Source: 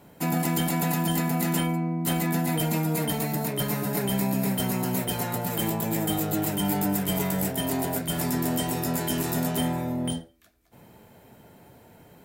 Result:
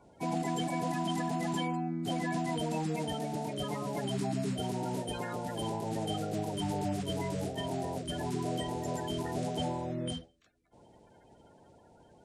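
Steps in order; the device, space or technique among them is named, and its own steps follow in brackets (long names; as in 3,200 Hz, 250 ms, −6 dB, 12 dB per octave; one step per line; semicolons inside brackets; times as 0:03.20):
clip after many re-uploads (low-pass filter 8,100 Hz 24 dB per octave; spectral magnitudes quantised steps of 30 dB)
level −6.5 dB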